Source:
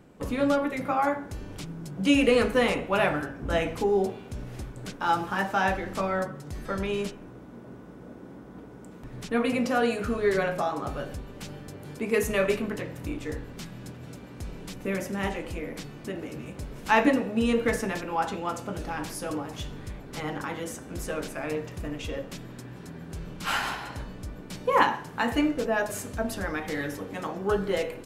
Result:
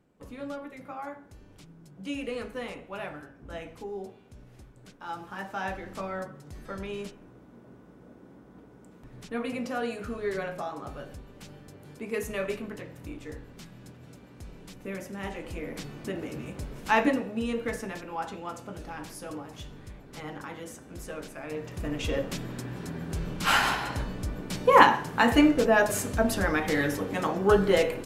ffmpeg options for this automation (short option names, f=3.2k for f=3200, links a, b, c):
-af "volume=12dB,afade=t=in:st=5.04:d=0.81:silence=0.473151,afade=t=in:st=15.23:d=0.65:silence=0.421697,afade=t=out:st=16.53:d=0.95:silence=0.446684,afade=t=in:st=21.49:d=0.68:silence=0.266073"